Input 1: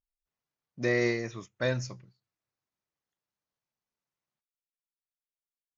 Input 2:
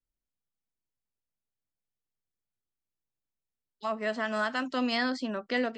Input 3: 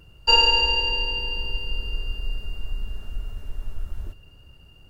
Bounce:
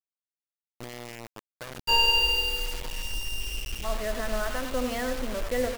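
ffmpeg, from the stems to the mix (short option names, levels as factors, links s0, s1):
-filter_complex "[0:a]acrossover=split=2600[s0][s1];[s1]acompressor=threshold=0.00224:ratio=4:attack=1:release=60[s2];[s0][s2]amix=inputs=2:normalize=0,alimiter=limit=0.0708:level=0:latency=1:release=21,acompressor=threshold=0.02:ratio=16,volume=0.708[s3];[1:a]lowpass=2800,equalizer=f=530:t=o:w=0.47:g=10.5,volume=0.596,asplit=2[s4][s5];[s5]volume=0.398[s6];[2:a]asplit=2[s7][s8];[s8]adelay=11.6,afreqshift=0.78[s9];[s7][s9]amix=inputs=2:normalize=1,adelay=1600,volume=0.75,asplit=2[s10][s11];[s11]volume=0.075[s12];[s6][s12]amix=inputs=2:normalize=0,aecho=0:1:92:1[s13];[s3][s4][s10][s13]amix=inputs=4:normalize=0,acrusher=bits=5:mix=0:aa=0.000001"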